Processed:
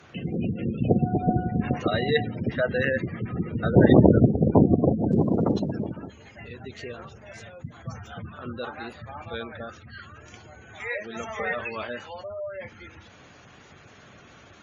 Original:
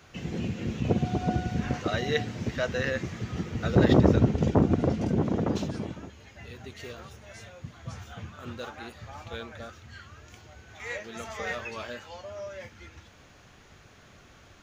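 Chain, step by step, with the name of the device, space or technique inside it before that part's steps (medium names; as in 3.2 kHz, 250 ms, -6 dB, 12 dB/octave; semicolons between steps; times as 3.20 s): 1.08–2.16 s: dynamic bell 1.5 kHz, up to -5 dB, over -51 dBFS, Q 5.7; noise-suppressed video call (high-pass 100 Hz 12 dB/octave; spectral gate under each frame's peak -20 dB strong; trim +5 dB; Opus 32 kbps 48 kHz)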